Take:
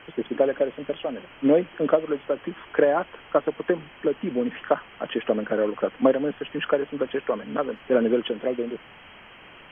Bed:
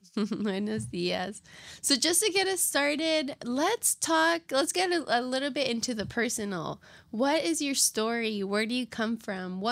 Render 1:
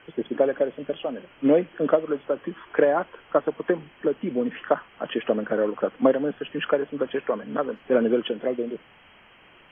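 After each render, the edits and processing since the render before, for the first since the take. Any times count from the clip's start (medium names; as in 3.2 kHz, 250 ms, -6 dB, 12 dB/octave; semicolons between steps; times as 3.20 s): noise print and reduce 6 dB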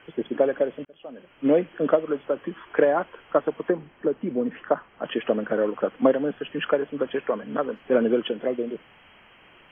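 0.85–1.60 s: fade in; 3.68–5.03 s: low-pass 1.4 kHz 6 dB/octave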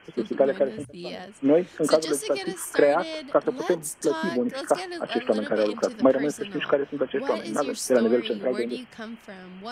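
add bed -7.5 dB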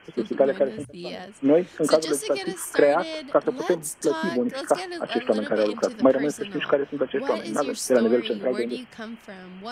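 trim +1 dB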